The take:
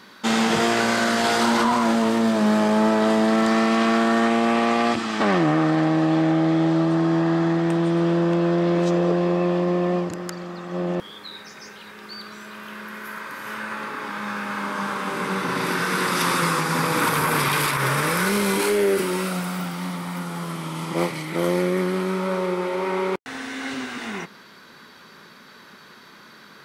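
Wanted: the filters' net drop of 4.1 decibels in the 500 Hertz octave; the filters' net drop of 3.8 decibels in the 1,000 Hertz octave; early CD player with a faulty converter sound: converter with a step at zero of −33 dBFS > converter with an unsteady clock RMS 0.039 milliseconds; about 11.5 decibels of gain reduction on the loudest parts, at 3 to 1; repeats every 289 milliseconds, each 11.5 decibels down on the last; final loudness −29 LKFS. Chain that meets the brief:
parametric band 500 Hz −5 dB
parametric band 1,000 Hz −3.5 dB
downward compressor 3 to 1, threshold −34 dBFS
repeating echo 289 ms, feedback 27%, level −11.5 dB
converter with a step at zero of −33 dBFS
converter with an unsteady clock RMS 0.039 ms
level +1.5 dB

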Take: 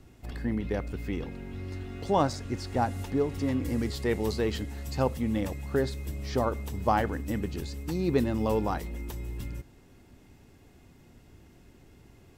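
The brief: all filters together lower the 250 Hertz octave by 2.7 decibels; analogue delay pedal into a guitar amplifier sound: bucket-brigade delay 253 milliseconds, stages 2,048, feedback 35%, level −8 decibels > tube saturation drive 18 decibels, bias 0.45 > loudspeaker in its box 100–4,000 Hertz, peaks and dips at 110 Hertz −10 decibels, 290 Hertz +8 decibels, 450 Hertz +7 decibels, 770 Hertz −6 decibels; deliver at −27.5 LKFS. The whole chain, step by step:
parametric band 250 Hz −8.5 dB
bucket-brigade delay 253 ms, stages 2,048, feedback 35%, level −8 dB
tube saturation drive 18 dB, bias 0.45
loudspeaker in its box 100–4,000 Hz, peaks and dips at 110 Hz −10 dB, 290 Hz +8 dB, 450 Hz +7 dB, 770 Hz −6 dB
level +5.5 dB

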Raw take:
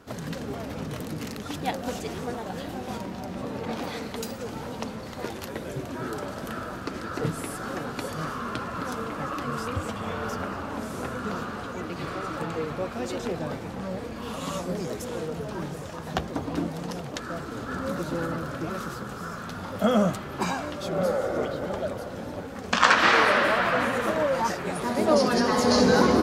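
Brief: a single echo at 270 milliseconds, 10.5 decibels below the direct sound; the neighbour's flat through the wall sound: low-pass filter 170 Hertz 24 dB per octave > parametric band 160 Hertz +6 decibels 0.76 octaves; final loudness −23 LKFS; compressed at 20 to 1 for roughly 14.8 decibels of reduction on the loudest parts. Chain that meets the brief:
downward compressor 20 to 1, threshold −28 dBFS
low-pass filter 170 Hz 24 dB per octave
parametric band 160 Hz +6 dB 0.76 octaves
single-tap delay 270 ms −10.5 dB
level +16.5 dB

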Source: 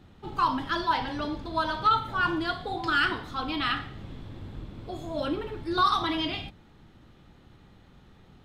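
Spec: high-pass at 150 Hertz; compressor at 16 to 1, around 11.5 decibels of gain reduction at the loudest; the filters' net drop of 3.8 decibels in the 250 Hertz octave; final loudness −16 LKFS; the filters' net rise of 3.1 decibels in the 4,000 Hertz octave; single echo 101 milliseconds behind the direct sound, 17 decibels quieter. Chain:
high-pass filter 150 Hz
parametric band 250 Hz −5 dB
parametric band 4,000 Hz +4 dB
downward compressor 16 to 1, threshold −29 dBFS
single-tap delay 101 ms −17 dB
level +18 dB

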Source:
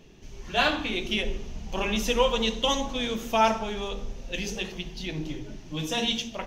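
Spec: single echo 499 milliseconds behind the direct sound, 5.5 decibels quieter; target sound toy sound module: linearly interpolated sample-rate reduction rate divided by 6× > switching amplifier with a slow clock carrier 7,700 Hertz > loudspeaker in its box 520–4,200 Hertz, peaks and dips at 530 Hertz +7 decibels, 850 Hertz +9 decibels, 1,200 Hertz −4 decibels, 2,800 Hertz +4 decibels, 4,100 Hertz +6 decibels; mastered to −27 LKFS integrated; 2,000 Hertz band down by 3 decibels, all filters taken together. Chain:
parametric band 2,000 Hz −8 dB
single-tap delay 499 ms −5.5 dB
linearly interpolated sample-rate reduction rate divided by 6×
switching amplifier with a slow clock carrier 7,700 Hz
loudspeaker in its box 520–4,200 Hz, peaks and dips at 530 Hz +7 dB, 850 Hz +9 dB, 1,200 Hz −4 dB, 2,800 Hz +4 dB, 4,100 Hz +6 dB
level −0.5 dB

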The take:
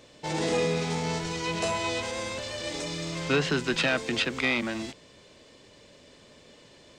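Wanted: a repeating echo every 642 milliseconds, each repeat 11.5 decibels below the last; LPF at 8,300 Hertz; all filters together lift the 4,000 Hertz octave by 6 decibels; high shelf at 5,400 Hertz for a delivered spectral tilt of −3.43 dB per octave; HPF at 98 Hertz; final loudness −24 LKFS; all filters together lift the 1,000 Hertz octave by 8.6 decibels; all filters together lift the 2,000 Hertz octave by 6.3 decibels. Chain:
high-pass filter 98 Hz
low-pass filter 8,300 Hz
parametric band 1,000 Hz +9 dB
parametric band 2,000 Hz +4 dB
parametric band 4,000 Hz +7 dB
high-shelf EQ 5,400 Hz −3.5 dB
repeating echo 642 ms, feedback 27%, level −11.5 dB
level −0.5 dB

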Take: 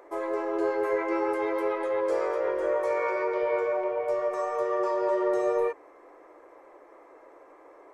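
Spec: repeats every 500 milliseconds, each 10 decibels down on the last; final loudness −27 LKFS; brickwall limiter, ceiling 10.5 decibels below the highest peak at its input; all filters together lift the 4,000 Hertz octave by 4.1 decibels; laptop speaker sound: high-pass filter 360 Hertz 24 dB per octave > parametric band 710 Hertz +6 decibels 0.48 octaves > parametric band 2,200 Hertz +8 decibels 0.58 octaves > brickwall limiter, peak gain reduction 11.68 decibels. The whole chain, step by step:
parametric band 4,000 Hz +3.5 dB
brickwall limiter −25 dBFS
high-pass filter 360 Hz 24 dB per octave
parametric band 710 Hz +6 dB 0.48 octaves
parametric band 2,200 Hz +8 dB 0.58 octaves
repeating echo 500 ms, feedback 32%, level −10 dB
level +12.5 dB
brickwall limiter −19 dBFS

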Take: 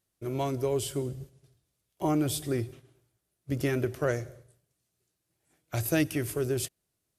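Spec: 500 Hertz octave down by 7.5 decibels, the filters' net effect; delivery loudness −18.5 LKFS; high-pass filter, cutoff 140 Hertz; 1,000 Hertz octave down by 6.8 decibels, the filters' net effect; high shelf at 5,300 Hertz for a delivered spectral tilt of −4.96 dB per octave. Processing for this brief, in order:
high-pass filter 140 Hz
parametric band 500 Hz −9 dB
parametric band 1,000 Hz −5.5 dB
high-shelf EQ 5,300 Hz −3.5 dB
level +17 dB

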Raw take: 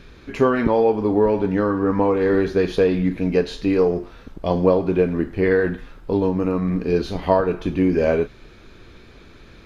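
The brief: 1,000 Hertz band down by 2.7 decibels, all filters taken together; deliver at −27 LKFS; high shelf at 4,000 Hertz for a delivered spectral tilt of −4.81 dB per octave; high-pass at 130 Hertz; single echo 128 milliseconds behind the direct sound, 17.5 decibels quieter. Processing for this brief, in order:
high-pass filter 130 Hz
parametric band 1,000 Hz −3.5 dB
high-shelf EQ 4,000 Hz +3.5 dB
single-tap delay 128 ms −17.5 dB
level −6 dB

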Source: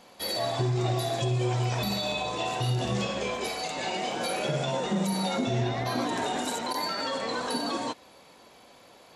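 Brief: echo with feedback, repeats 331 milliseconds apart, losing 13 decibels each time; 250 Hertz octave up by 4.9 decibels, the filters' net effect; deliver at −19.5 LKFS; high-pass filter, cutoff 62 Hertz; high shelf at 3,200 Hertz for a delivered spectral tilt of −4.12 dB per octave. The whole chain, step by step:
high-pass filter 62 Hz
parametric band 250 Hz +6.5 dB
high-shelf EQ 3,200 Hz +8.5 dB
repeating echo 331 ms, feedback 22%, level −13 dB
level +6 dB

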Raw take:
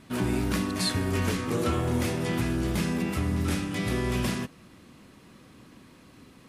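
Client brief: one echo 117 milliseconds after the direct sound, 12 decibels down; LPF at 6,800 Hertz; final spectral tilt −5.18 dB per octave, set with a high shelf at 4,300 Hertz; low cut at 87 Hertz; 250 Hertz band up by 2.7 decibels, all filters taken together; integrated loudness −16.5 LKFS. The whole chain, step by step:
high-pass filter 87 Hz
low-pass filter 6,800 Hz
parametric band 250 Hz +3.5 dB
high-shelf EQ 4,300 Hz +7.5 dB
single-tap delay 117 ms −12 dB
level +10 dB

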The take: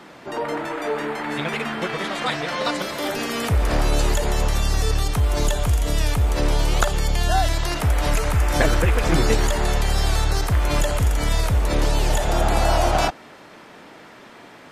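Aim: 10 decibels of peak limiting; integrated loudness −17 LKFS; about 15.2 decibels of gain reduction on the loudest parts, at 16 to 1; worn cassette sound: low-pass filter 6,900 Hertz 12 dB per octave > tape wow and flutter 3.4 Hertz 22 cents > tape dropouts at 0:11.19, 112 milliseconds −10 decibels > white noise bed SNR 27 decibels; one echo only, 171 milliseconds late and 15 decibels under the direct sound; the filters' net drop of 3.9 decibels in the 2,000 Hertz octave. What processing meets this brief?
parametric band 2,000 Hz −5 dB
downward compressor 16 to 1, threshold −30 dBFS
brickwall limiter −31 dBFS
low-pass filter 6,900 Hz 12 dB per octave
single-tap delay 171 ms −15 dB
tape wow and flutter 3.4 Hz 22 cents
tape dropouts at 0:11.19, 112 ms −10 dB
white noise bed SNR 27 dB
level +24 dB

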